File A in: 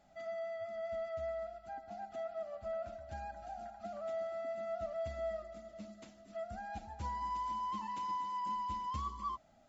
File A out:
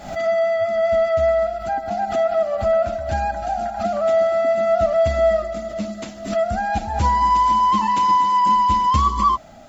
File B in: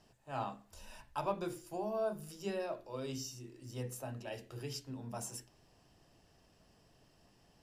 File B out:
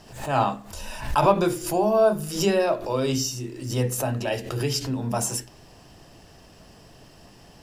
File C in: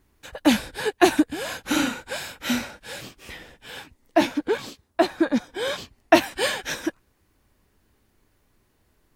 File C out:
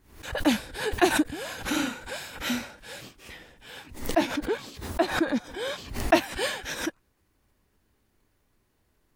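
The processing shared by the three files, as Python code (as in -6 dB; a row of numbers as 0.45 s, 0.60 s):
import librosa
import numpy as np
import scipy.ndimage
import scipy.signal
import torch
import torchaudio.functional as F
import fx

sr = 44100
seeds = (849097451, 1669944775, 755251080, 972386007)

y = fx.pre_swell(x, sr, db_per_s=97.0)
y = y * 10.0 ** (-6 / 20.0) / np.max(np.abs(y))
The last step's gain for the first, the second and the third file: +22.0 dB, +17.0 dB, -5.0 dB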